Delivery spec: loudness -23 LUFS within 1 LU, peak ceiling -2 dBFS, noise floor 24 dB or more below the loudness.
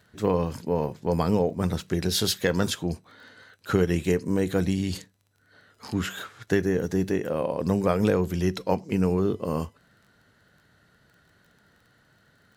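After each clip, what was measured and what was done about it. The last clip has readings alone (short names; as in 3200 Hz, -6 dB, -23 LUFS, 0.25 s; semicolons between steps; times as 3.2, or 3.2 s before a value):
ticks 21/s; loudness -26.0 LUFS; peak -8.0 dBFS; loudness target -23.0 LUFS
-> de-click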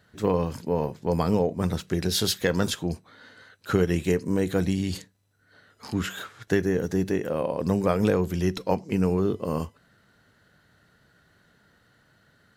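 ticks 0/s; loudness -26.0 LUFS; peak -8.0 dBFS; loudness target -23.0 LUFS
-> gain +3 dB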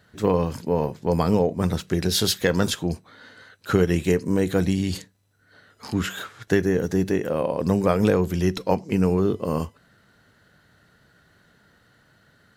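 loudness -23.0 LUFS; peak -5.0 dBFS; noise floor -60 dBFS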